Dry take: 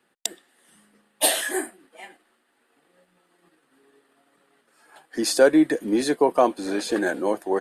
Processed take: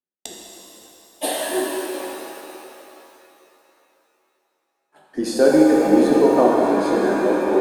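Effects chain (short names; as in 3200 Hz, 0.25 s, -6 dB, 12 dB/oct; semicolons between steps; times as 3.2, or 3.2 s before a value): gate -51 dBFS, range -32 dB; tilt shelf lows +6.5 dB, about 800 Hz; shimmer reverb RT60 3.2 s, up +7 st, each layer -8 dB, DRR -3 dB; gain -2.5 dB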